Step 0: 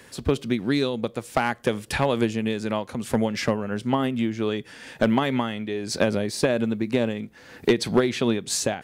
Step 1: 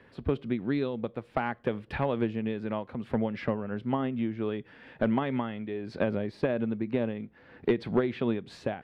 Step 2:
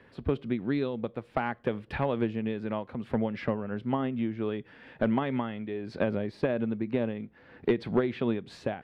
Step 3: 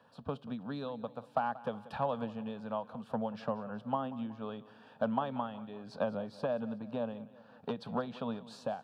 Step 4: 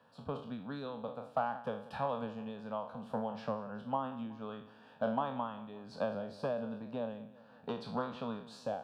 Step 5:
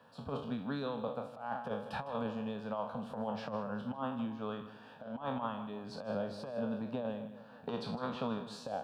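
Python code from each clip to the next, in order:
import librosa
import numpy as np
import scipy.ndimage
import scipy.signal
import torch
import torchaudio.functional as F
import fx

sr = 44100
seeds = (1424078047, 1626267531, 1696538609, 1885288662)

y1 = fx.air_absorb(x, sr, metres=420.0)
y1 = F.gain(torch.from_numpy(y1), -5.0).numpy()
y2 = y1
y3 = scipy.signal.sosfilt(scipy.signal.butter(2, 200.0, 'highpass', fs=sr, output='sos'), y2)
y3 = fx.fixed_phaser(y3, sr, hz=860.0, stages=4)
y3 = fx.echo_feedback(y3, sr, ms=185, feedback_pct=51, wet_db=-18)
y4 = fx.spec_trails(y3, sr, decay_s=0.47)
y4 = F.gain(torch.from_numpy(y4), -3.0).numpy()
y5 = fx.over_compress(y4, sr, threshold_db=-38.0, ratio=-0.5)
y5 = y5 + 10.0 ** (-14.0 / 20.0) * np.pad(y5, (int(156 * sr / 1000.0), 0))[:len(y5)]
y5 = F.gain(torch.from_numpy(y5), 2.0).numpy()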